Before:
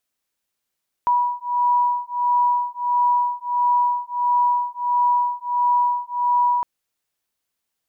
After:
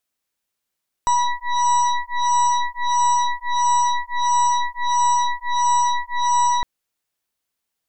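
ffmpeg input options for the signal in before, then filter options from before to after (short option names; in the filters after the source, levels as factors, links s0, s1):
-f lavfi -i "aevalsrc='0.1*(sin(2*PI*973*t)+sin(2*PI*974.5*t))':d=5.56:s=44100"
-af "aeval=exprs='0.211*(cos(1*acos(clip(val(0)/0.211,-1,1)))-cos(1*PI/2))+0.00531*(cos(3*acos(clip(val(0)/0.211,-1,1)))-cos(3*PI/2))+0.0473*(cos(8*acos(clip(val(0)/0.211,-1,1)))-cos(8*PI/2))':c=same"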